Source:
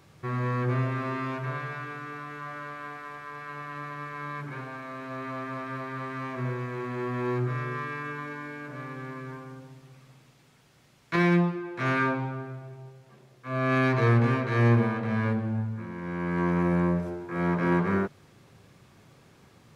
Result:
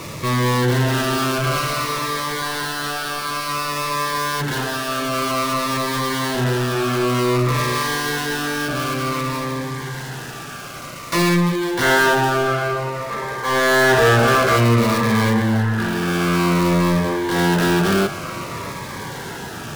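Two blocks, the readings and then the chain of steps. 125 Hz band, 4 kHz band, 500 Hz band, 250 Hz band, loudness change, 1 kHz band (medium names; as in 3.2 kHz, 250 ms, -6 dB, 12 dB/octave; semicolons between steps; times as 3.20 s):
+7.0 dB, +23.5 dB, +12.0 dB, +8.5 dB, +10.0 dB, +12.5 dB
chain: dead-time distortion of 0.18 ms; bass shelf 310 Hz -8 dB; in parallel at +1 dB: peak limiter -22 dBFS, peak gain reduction 7.5 dB; on the sum: time-frequency box 11.83–14.57 s, 370–2200 Hz +9 dB; power-law waveshaper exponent 0.5; on a send: band-passed feedback delay 651 ms, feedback 73%, band-pass 1.3 kHz, level -10 dB; on the sum: Shepard-style phaser falling 0.54 Hz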